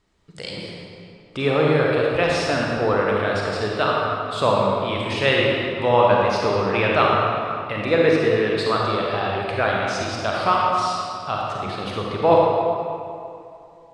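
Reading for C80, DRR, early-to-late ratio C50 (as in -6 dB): -0.5 dB, -3.0 dB, -2.0 dB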